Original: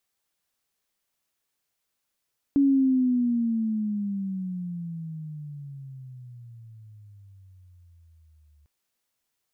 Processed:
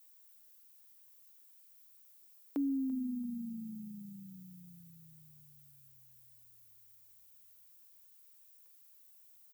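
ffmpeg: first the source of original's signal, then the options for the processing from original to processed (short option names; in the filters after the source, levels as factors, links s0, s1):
-f lavfi -i "aevalsrc='pow(10,(-16-40*t/6.1)/20)*sin(2*PI*282*6.1/(-23.5*log(2)/12)*(exp(-23.5*log(2)/12*t/6.1)-1))':d=6.1:s=44100"
-filter_complex "[0:a]highpass=440,aemphasis=mode=production:type=bsi,asplit=4[s0][s1][s2][s3];[s1]adelay=338,afreqshift=-45,volume=0.141[s4];[s2]adelay=676,afreqshift=-90,volume=0.0452[s5];[s3]adelay=1014,afreqshift=-135,volume=0.0145[s6];[s0][s4][s5][s6]amix=inputs=4:normalize=0"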